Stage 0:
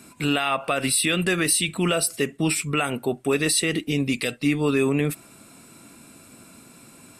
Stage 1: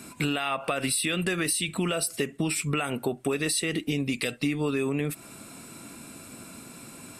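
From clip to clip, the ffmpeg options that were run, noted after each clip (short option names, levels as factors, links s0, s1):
-af "acompressor=threshold=0.0398:ratio=6,volume=1.5"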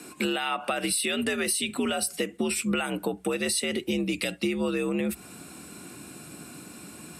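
-af "asubboost=boost=2.5:cutoff=160,afreqshift=60"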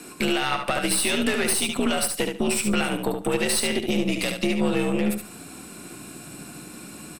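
-filter_complex "[0:a]aeval=exprs='(tanh(11.2*val(0)+0.75)-tanh(0.75))/11.2':c=same,asplit=2[s0][s1];[s1]aecho=0:1:72|144|216:0.531|0.106|0.0212[s2];[s0][s2]amix=inputs=2:normalize=0,volume=2.24"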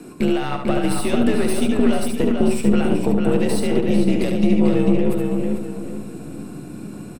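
-filter_complex "[0:a]tiltshelf=f=810:g=8.5,asplit=2[s0][s1];[s1]adelay=445,lowpass=f=4100:p=1,volume=0.631,asplit=2[s2][s3];[s3]adelay=445,lowpass=f=4100:p=1,volume=0.36,asplit=2[s4][s5];[s5]adelay=445,lowpass=f=4100:p=1,volume=0.36,asplit=2[s6][s7];[s7]adelay=445,lowpass=f=4100:p=1,volume=0.36,asplit=2[s8][s9];[s9]adelay=445,lowpass=f=4100:p=1,volume=0.36[s10];[s0][s2][s4][s6][s8][s10]amix=inputs=6:normalize=0"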